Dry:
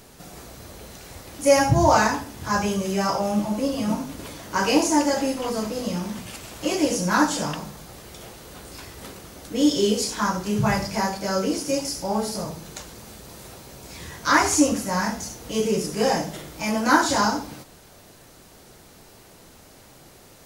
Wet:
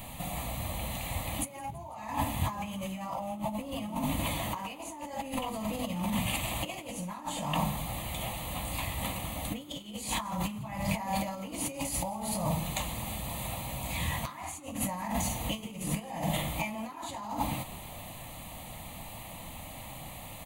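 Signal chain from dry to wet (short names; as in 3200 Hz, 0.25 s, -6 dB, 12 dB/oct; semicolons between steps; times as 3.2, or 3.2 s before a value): negative-ratio compressor -33 dBFS, ratio -1; fixed phaser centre 1500 Hz, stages 6; frequency-shifting echo 0.166 s, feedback 56%, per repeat +60 Hz, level -21 dB; gain +1 dB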